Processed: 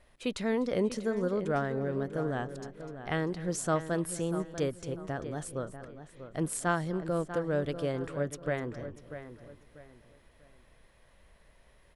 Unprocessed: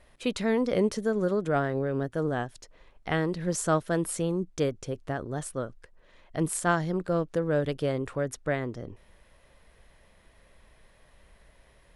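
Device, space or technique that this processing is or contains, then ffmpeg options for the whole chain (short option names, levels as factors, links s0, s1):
ducked delay: -filter_complex "[0:a]asplit=3[s0][s1][s2];[s1]adelay=250,volume=0.355[s3];[s2]apad=whole_len=538302[s4];[s3][s4]sidechaincompress=threshold=0.0251:ratio=8:attack=6.3:release=1020[s5];[s0][s5]amix=inputs=2:normalize=0,asplit=2[s6][s7];[s7]adelay=642,lowpass=f=3200:p=1,volume=0.282,asplit=2[s8][s9];[s9]adelay=642,lowpass=f=3200:p=1,volume=0.32,asplit=2[s10][s11];[s11]adelay=642,lowpass=f=3200:p=1,volume=0.32[s12];[s6][s8][s10][s12]amix=inputs=4:normalize=0,volume=0.631"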